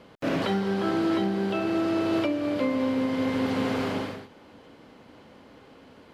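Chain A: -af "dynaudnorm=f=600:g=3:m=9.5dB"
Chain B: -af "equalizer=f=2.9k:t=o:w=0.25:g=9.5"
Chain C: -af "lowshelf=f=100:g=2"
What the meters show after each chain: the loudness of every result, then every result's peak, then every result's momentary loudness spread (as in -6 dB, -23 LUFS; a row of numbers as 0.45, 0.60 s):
-18.0, -26.5, -26.5 LUFS; -7.0, -14.5, -16.0 dBFS; 9, 4, 5 LU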